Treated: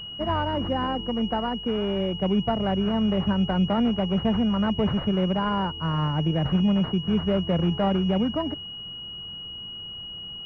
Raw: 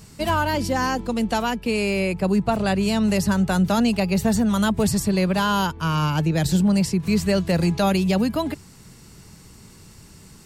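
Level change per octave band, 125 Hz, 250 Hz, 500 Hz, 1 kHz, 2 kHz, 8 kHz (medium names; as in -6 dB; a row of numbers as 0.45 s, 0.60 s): -3.0 dB, -3.0 dB, -3.0 dB, -4.0 dB, -10.0 dB, under -30 dB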